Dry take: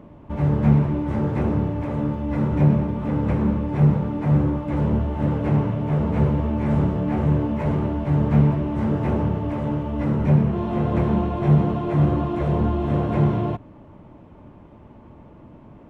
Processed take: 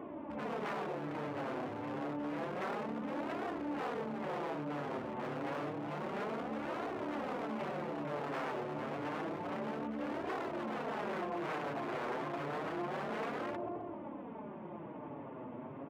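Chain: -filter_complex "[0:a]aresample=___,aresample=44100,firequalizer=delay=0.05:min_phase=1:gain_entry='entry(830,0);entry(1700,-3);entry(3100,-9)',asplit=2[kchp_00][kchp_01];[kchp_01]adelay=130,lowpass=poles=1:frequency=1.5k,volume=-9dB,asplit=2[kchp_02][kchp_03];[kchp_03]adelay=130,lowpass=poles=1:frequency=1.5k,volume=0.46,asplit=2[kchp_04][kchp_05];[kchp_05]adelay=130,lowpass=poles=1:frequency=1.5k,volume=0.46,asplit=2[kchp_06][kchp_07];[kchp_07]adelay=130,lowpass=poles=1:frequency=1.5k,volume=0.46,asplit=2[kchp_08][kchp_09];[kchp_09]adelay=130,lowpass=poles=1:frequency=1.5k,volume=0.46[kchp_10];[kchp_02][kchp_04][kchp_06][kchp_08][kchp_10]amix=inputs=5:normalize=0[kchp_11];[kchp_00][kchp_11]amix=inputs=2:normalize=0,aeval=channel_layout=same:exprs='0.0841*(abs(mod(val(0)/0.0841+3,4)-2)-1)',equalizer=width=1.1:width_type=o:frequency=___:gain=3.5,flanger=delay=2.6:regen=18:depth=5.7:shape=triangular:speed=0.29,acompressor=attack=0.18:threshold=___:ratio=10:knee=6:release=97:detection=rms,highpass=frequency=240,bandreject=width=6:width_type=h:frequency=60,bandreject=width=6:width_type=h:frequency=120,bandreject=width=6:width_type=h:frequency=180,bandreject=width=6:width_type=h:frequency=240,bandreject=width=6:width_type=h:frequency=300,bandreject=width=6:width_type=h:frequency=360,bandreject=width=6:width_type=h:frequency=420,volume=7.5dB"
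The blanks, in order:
8000, 2.5k, -39dB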